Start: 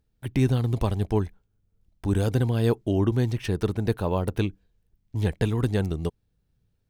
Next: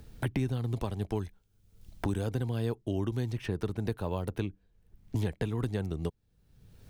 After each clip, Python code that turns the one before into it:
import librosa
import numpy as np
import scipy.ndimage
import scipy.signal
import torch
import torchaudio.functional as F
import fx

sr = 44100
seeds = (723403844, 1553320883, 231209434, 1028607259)

y = fx.band_squash(x, sr, depth_pct=100)
y = y * librosa.db_to_amplitude(-8.5)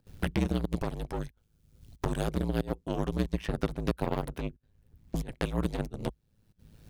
y = fx.volume_shaper(x, sr, bpm=92, per_beat=1, depth_db=-24, release_ms=65.0, shape='slow start')
y = fx.cheby_harmonics(y, sr, harmonics=(6,), levels_db=(-14,), full_scale_db=-17.0)
y = y * np.sin(2.0 * np.pi * 54.0 * np.arange(len(y)) / sr)
y = y * librosa.db_to_amplitude(3.5)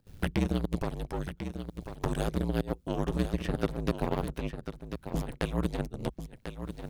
y = x + 10.0 ** (-9.0 / 20.0) * np.pad(x, (int(1044 * sr / 1000.0), 0))[:len(x)]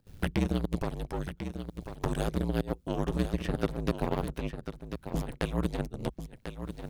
y = x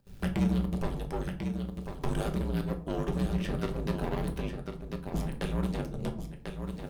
y = 10.0 ** (-22.5 / 20.0) * np.tanh(x / 10.0 ** (-22.5 / 20.0))
y = fx.quant_float(y, sr, bits=6)
y = fx.room_shoebox(y, sr, seeds[0], volume_m3=400.0, walls='furnished', distance_m=1.2)